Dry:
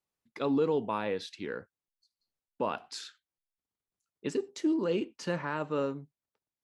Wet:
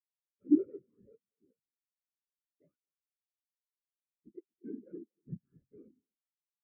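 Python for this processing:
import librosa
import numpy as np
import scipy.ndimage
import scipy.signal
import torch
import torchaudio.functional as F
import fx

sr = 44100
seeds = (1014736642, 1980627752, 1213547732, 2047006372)

y = fx.halfwave_hold(x, sr)
y = fx.fixed_phaser(y, sr, hz=1900.0, stages=4)
y = fx.whisperise(y, sr, seeds[0])
y = y + 10.0 ** (-10.0 / 20.0) * np.pad(y, (int(236 * sr / 1000.0), 0))[:len(y)]
y = fx.spectral_expand(y, sr, expansion=4.0)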